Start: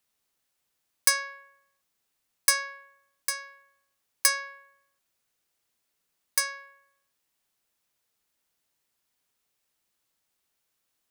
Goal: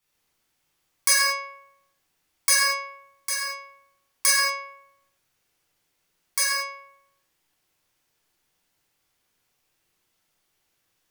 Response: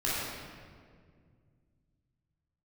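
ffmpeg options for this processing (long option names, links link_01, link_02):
-filter_complex "[1:a]atrim=start_sample=2205,afade=type=out:start_time=0.34:duration=0.01,atrim=end_sample=15435,asetrate=52920,aresample=44100[link_01];[0:a][link_01]afir=irnorm=-1:irlink=0"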